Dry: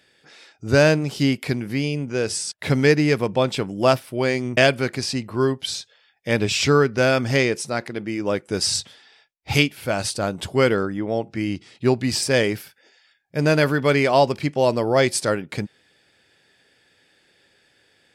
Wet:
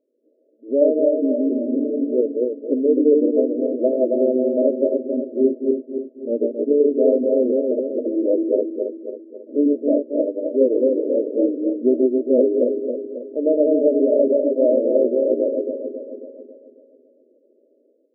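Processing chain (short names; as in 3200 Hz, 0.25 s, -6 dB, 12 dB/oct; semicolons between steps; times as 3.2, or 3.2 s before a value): regenerating reverse delay 0.136 s, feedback 67%, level -1 dB; FFT band-pass 230–650 Hz; 13.38–15.31 tilt +1.5 dB/oct; AGC gain up to 9.5 dB; gain -4 dB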